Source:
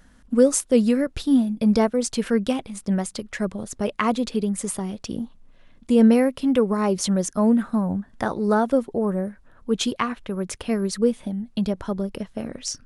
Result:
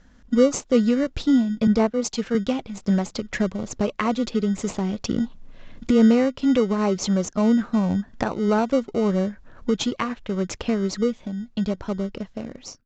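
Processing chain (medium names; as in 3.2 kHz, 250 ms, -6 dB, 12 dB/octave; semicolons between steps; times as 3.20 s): fade out at the end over 2.54 s; recorder AGC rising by 9.8 dB/s; in parallel at -11 dB: sample-and-hold 26×; on the sum: steep low-pass 7.4 kHz 96 dB/octave; 1.67–2.35 s: three bands expanded up and down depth 100%; trim -2.5 dB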